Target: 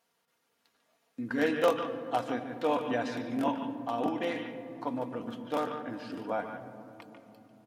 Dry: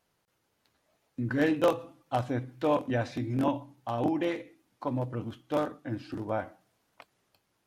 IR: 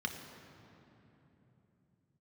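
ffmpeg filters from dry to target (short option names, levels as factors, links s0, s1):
-filter_complex "[0:a]highpass=f=380:p=1,aecho=1:1:4.3:0.43,asplit=2[s0][s1];[1:a]atrim=start_sample=2205,lowpass=4200,adelay=145[s2];[s1][s2]afir=irnorm=-1:irlink=0,volume=0.355[s3];[s0][s3]amix=inputs=2:normalize=0"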